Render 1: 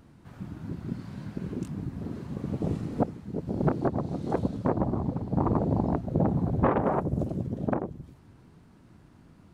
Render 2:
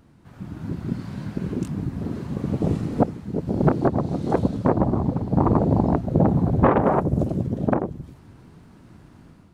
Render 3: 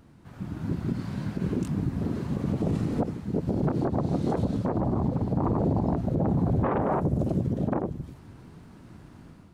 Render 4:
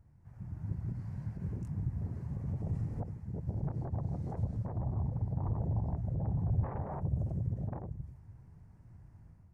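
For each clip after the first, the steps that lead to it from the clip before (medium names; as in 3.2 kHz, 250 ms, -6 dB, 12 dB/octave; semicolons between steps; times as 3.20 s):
level rider gain up to 7 dB
peak limiter -17 dBFS, peak gain reduction 11 dB
FFT filter 110 Hz 0 dB, 270 Hz -19 dB, 870 Hz -11 dB, 1.3 kHz -18 dB, 1.9 kHz -13 dB, 3.6 kHz -28 dB, 5.5 kHz -16 dB; trim -2.5 dB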